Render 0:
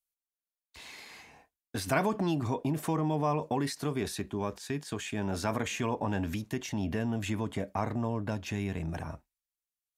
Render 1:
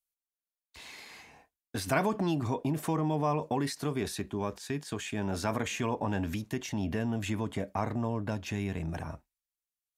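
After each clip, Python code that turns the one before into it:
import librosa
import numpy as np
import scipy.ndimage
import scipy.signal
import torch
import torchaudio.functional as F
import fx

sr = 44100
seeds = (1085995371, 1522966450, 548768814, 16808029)

y = x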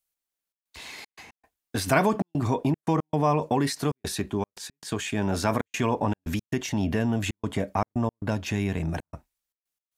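y = fx.step_gate(x, sr, bpm=115, pattern='xxxx.xxx.x.xx', floor_db=-60.0, edge_ms=4.5)
y = y * librosa.db_to_amplitude(6.5)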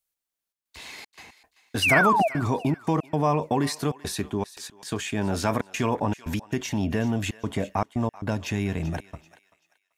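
y = fx.spec_paint(x, sr, seeds[0], shape='fall', start_s=1.82, length_s=0.46, low_hz=610.0, high_hz=3000.0, level_db=-21.0)
y = fx.echo_thinned(y, sr, ms=386, feedback_pct=33, hz=1200.0, wet_db=-15.0)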